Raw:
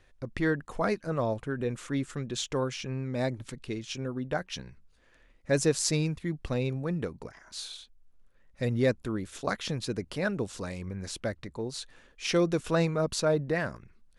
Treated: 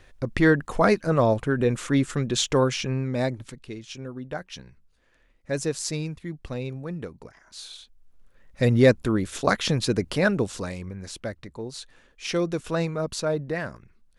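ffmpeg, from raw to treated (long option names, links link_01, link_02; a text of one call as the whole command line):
ffmpeg -i in.wav -af "volume=20dB,afade=type=out:start_time=2.72:duration=0.89:silence=0.281838,afade=type=in:start_time=7.58:duration=1.06:silence=0.281838,afade=type=out:start_time=10.17:duration=0.79:silence=0.354813" out.wav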